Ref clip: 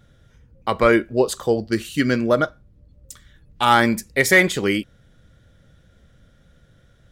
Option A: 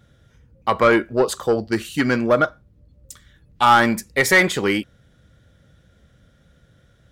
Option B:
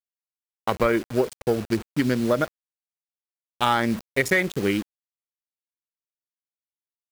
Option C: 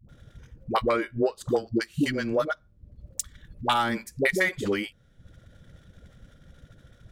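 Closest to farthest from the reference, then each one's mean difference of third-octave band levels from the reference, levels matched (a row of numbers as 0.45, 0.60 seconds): A, B, C; 2.0, 6.5, 10.5 decibels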